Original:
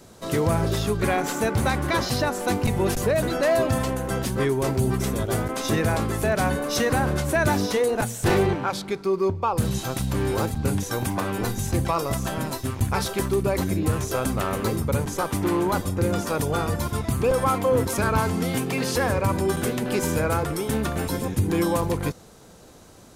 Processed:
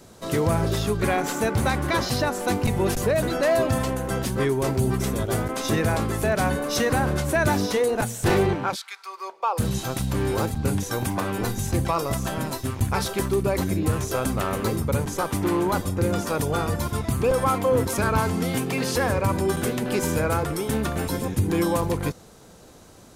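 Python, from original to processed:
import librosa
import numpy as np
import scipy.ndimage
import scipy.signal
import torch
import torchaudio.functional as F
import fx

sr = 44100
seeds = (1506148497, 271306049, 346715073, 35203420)

y = fx.highpass(x, sr, hz=fx.line((8.74, 1500.0), (9.58, 420.0)), slope=24, at=(8.74, 9.58), fade=0.02)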